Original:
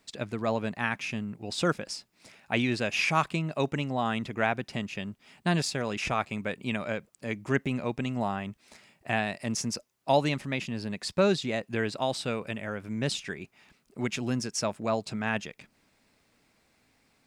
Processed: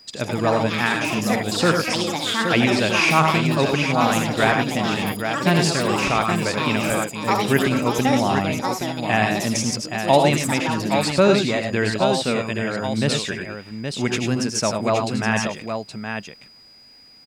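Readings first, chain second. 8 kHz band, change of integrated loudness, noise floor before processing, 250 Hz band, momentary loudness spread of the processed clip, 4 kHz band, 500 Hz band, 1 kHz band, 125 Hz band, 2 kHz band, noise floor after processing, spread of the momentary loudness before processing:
+11.5 dB, +10.0 dB, −69 dBFS, +10.5 dB, 8 LU, +11.5 dB, +10.0 dB, +11.5 dB, +10.0 dB, +10.5 dB, −49 dBFS, 10 LU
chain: multi-tap delay 82/101/821 ms −8/−6.5/−6.5 dB
steady tone 4,900 Hz −54 dBFS
delay with pitch and tempo change per echo 144 ms, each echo +6 semitones, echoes 2, each echo −6 dB
level +7.5 dB

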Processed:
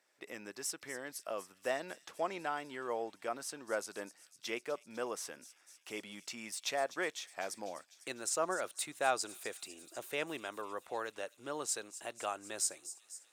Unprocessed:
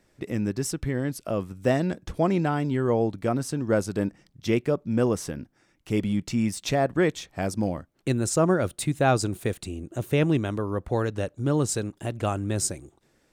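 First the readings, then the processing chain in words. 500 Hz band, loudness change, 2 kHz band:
−13.0 dB, −13.0 dB, −6.5 dB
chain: camcorder AGC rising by 5.1 dB per second
high-pass filter 710 Hz 12 dB per octave
on a send: delay with a high-pass on its return 250 ms, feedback 71%, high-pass 4,500 Hz, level −12 dB
on the sum: level −6.5 dB

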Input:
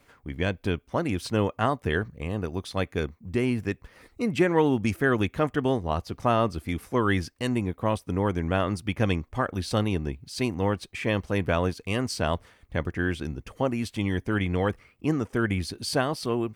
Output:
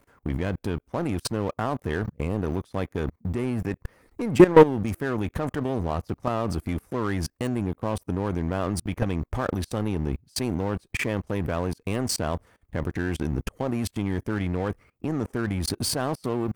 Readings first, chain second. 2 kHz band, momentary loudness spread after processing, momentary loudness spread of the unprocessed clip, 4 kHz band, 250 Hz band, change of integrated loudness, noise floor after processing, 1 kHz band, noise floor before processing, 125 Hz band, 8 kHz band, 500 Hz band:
−3.5 dB, 4 LU, 7 LU, −1.0 dB, +1.0 dB, +1.0 dB, −69 dBFS, −0.5 dB, −62 dBFS, +0.5 dB, +5.5 dB, +2.0 dB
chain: de-essing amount 65%
parametric band 3,500 Hz −9 dB 2 octaves
output level in coarse steps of 21 dB
leveller curve on the samples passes 2
level +8.5 dB

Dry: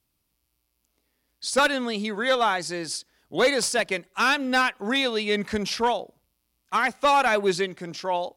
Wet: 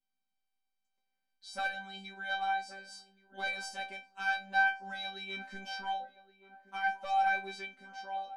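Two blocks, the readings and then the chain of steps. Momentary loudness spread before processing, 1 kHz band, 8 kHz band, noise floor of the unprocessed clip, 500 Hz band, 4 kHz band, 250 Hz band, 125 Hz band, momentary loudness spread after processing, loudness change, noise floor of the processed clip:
10 LU, −8.5 dB, −21.0 dB, −76 dBFS, −24.5 dB, −14.5 dB, −24.5 dB, below −15 dB, 17 LU, −11.0 dB, −84 dBFS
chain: high-shelf EQ 6,300 Hz −10.5 dB
phases set to zero 194 Hz
tuned comb filter 260 Hz, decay 0.22 s, harmonics all, mix 100%
on a send: feedback echo with a band-pass in the loop 1,124 ms, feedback 57%, band-pass 500 Hz, level −13 dB

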